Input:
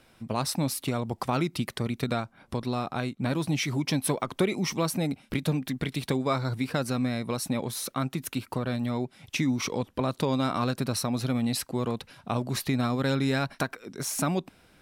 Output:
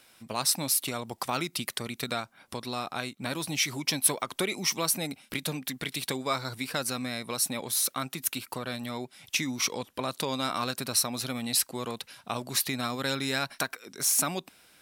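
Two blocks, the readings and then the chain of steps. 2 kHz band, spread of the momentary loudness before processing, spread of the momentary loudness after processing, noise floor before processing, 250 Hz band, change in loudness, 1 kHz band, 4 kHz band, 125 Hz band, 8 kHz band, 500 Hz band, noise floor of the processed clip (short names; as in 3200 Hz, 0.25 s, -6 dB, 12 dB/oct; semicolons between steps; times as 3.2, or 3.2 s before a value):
+1.5 dB, 6 LU, 10 LU, -61 dBFS, -7.5 dB, -0.5 dB, -1.5 dB, +4.5 dB, -10.0 dB, +7.5 dB, -4.5 dB, -63 dBFS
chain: tilt +3 dB/oct; gain -1.5 dB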